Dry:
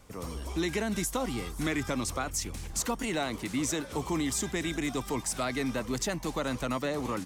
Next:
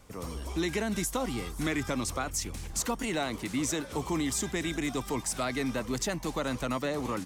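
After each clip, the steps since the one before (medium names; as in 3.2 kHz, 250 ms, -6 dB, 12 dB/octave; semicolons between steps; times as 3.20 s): no audible change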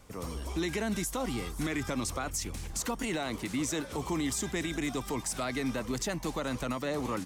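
peak limiter -23.5 dBFS, peak gain reduction 5.5 dB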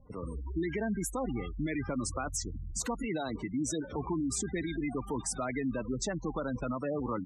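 spectral gate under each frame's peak -15 dB strong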